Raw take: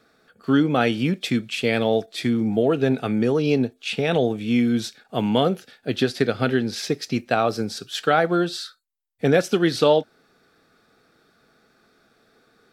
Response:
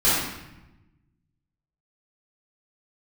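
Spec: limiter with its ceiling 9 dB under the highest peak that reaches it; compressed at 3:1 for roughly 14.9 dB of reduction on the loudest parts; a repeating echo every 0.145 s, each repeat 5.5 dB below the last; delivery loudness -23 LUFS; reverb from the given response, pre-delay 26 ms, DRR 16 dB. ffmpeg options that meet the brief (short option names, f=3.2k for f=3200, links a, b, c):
-filter_complex "[0:a]acompressor=threshold=-34dB:ratio=3,alimiter=level_in=2dB:limit=-24dB:level=0:latency=1,volume=-2dB,aecho=1:1:145|290|435|580|725|870|1015:0.531|0.281|0.149|0.079|0.0419|0.0222|0.0118,asplit=2[a][b];[1:a]atrim=start_sample=2205,adelay=26[c];[b][c]afir=irnorm=-1:irlink=0,volume=-33.5dB[d];[a][d]amix=inputs=2:normalize=0,volume=12dB"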